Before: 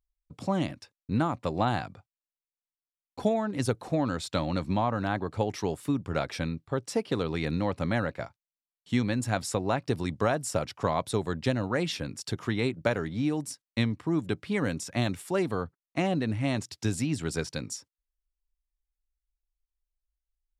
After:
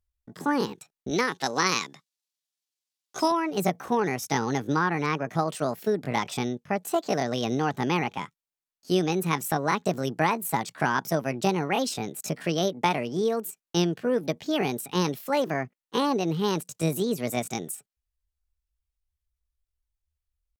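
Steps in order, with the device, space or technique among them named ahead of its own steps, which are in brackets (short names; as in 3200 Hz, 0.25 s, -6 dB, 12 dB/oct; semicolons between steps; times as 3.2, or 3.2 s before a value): 1.11–3.32 weighting filter D; chipmunk voice (pitch shift +7 st); gain +2.5 dB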